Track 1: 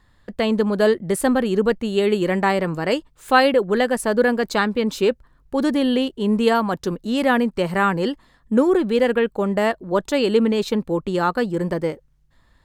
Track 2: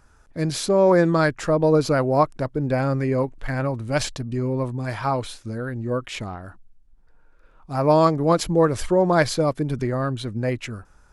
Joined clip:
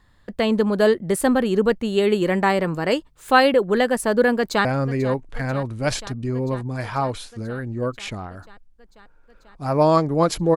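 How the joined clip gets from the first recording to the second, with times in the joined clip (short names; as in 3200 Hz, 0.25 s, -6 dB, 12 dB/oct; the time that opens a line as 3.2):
track 1
4.37–4.65 echo throw 0.49 s, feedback 80%, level -15.5 dB
4.65 switch to track 2 from 2.74 s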